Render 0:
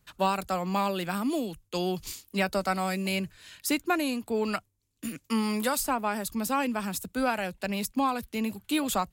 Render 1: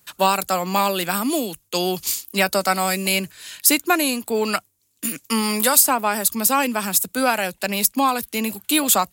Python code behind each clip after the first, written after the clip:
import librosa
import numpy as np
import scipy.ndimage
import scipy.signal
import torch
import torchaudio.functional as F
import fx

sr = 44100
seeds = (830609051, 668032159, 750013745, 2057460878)

y = fx.highpass(x, sr, hz=270.0, slope=6)
y = fx.high_shelf(y, sr, hz=5900.0, db=11.5)
y = y * librosa.db_to_amplitude(8.5)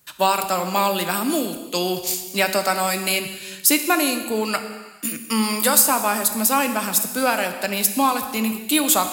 y = fx.rev_gated(x, sr, seeds[0], gate_ms=490, shape='falling', drr_db=7.0)
y = y * librosa.db_to_amplitude(-1.0)